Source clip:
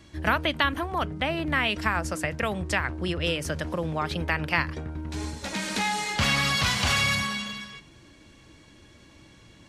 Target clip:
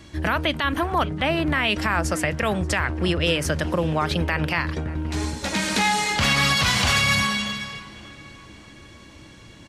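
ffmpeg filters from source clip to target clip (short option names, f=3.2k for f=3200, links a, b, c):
-filter_complex "[0:a]alimiter=limit=-17dB:level=0:latency=1:release=42,asplit=2[a][b];[b]adelay=579,lowpass=f=4k:p=1,volume=-19dB,asplit=2[c][d];[d]adelay=579,lowpass=f=4k:p=1,volume=0.49,asplit=2[e][f];[f]adelay=579,lowpass=f=4k:p=1,volume=0.49,asplit=2[g][h];[h]adelay=579,lowpass=f=4k:p=1,volume=0.49[i];[a][c][e][g][i]amix=inputs=5:normalize=0,volume=6.5dB"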